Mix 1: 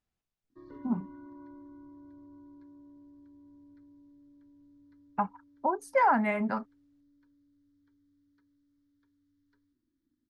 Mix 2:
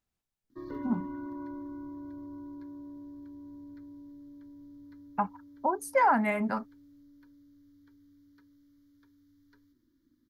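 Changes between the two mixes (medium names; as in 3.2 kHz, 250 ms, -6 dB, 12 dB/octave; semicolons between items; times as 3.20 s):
background +9.0 dB; master: remove distance through air 61 m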